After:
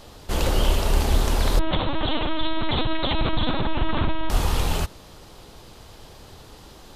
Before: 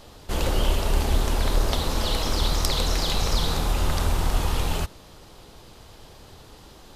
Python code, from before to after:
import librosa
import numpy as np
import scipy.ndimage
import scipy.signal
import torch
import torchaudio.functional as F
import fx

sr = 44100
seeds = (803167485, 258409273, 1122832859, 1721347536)

y = fx.lpc_vocoder(x, sr, seeds[0], excitation='pitch_kept', order=10, at=(1.59, 4.3))
y = y * 10.0 ** (2.0 / 20.0)